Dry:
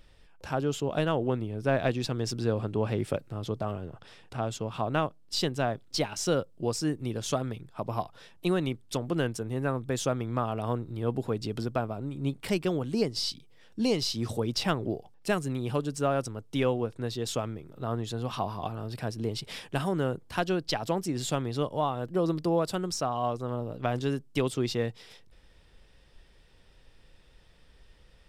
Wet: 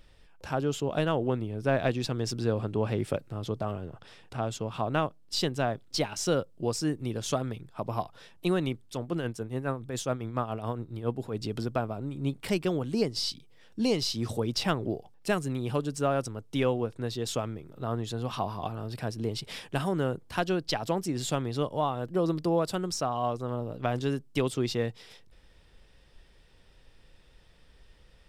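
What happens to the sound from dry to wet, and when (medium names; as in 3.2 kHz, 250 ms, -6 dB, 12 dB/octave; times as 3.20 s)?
8.87–11.35 s: tremolo 7.2 Hz, depth 58%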